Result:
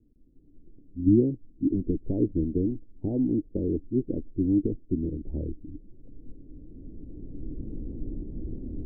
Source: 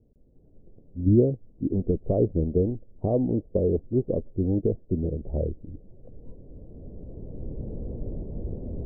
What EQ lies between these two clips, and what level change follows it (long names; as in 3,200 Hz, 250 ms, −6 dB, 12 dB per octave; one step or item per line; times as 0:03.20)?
formant resonators in series u
spectral tilt −4 dB per octave
low-shelf EQ 170 Hz −5.5 dB
0.0 dB